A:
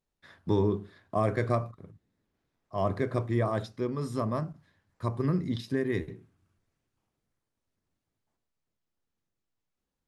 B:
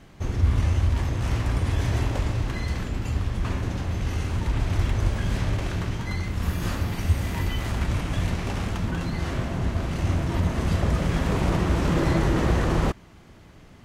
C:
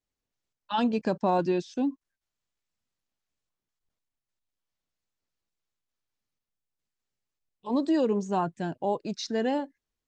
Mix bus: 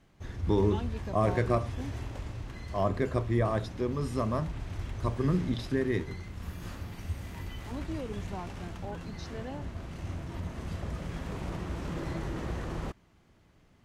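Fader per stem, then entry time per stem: 0.0, -13.5, -14.0 dB; 0.00, 0.00, 0.00 s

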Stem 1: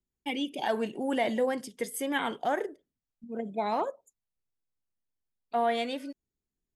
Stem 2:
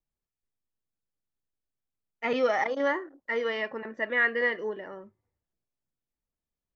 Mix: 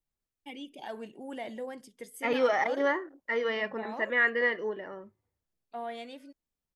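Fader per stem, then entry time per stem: -11.0, -0.5 dB; 0.20, 0.00 s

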